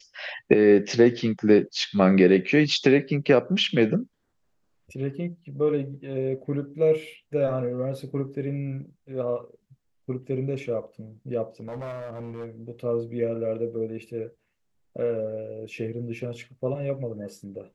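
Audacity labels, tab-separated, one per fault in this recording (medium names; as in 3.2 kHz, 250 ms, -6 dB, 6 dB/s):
11.600000	12.460000	clipped -31.5 dBFS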